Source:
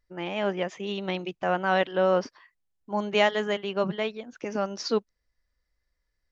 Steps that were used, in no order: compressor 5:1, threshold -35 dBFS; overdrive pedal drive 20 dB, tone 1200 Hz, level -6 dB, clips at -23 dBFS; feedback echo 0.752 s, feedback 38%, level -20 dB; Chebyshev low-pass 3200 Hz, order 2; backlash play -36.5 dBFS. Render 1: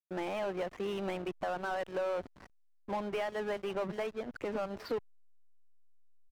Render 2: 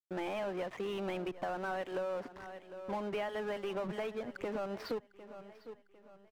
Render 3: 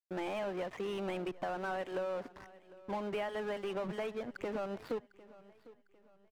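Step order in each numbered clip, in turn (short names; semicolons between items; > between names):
Chebyshev low-pass > compressor > overdrive pedal > feedback echo > backlash; Chebyshev low-pass > overdrive pedal > backlash > feedback echo > compressor; overdrive pedal > Chebyshev low-pass > backlash > compressor > feedback echo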